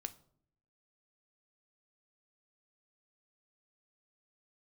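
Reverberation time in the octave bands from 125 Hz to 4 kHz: 0.95, 0.85, 0.70, 0.55, 0.40, 0.35 s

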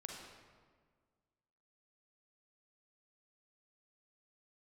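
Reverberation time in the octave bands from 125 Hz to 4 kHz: 2.0, 2.0, 1.8, 1.6, 1.3, 1.0 s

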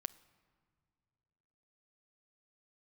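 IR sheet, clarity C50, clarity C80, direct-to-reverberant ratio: 19.5 dB, 21.0 dB, 14.0 dB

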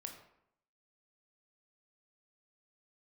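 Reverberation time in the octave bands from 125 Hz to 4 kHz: 0.75, 0.80, 0.75, 0.75, 0.65, 0.45 s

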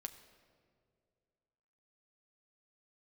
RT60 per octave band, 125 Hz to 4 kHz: 2.6, 2.4, 2.5, 1.9, 1.5, 1.2 s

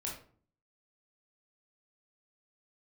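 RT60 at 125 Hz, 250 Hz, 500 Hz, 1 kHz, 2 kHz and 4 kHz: 0.70, 0.65, 0.50, 0.45, 0.35, 0.30 s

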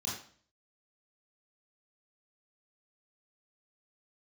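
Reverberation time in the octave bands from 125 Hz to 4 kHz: 0.60, 0.55, 0.50, 0.45, 0.45, 0.45 s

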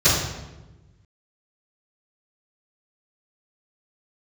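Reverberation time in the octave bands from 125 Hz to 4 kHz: 1.8, 1.6, 1.2, 1.0, 0.90, 0.75 s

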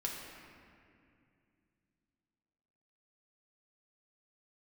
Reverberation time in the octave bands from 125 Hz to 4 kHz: 3.5, 3.4, 2.6, 2.2, 2.3, 1.5 s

